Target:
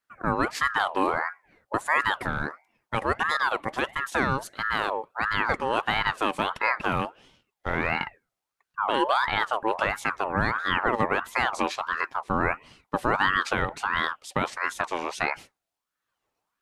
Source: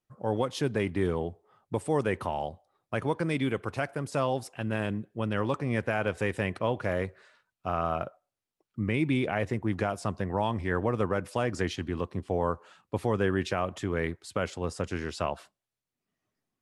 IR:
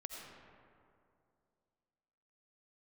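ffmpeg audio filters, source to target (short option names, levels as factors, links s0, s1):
-filter_complex "[0:a]asettb=1/sr,asplit=3[s0][s1][s2];[s0]atrim=end=7.024[s3];[s1]atrim=start=7.02:end=7.86,asetpts=PTS-STARTPTS,afade=t=in:d=0.004:c=qsin,afade=t=out:st=0.836:d=0.004:c=qsin,aeval=exprs='if(lt(val(0),0),0.708*val(0),val(0))':c=same[s4];[s2]atrim=start=7.856[s5];[s3][s4]acrossfade=d=0.004:c1=hsin:c2=qsin[s6];[s6][s5]acrossfade=d=0.004:c1=qsin:c2=hsin,aeval=exprs='val(0)*sin(2*PI*1100*n/s+1100*0.4/1.5*sin(2*PI*1.5*n/s))':c=same,volume=2"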